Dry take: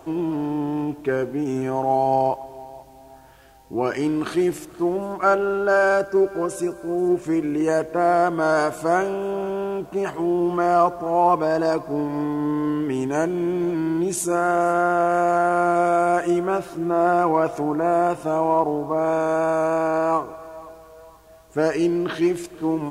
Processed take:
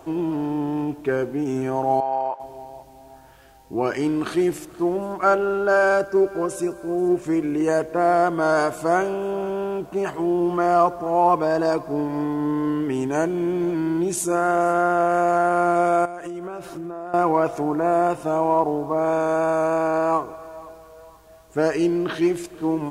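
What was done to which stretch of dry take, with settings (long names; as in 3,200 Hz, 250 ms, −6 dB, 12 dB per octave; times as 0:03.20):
0:02.00–0:02.40: resonant band-pass 1,300 Hz, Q 1.1
0:16.05–0:17.14: downward compressor 16 to 1, threshold −28 dBFS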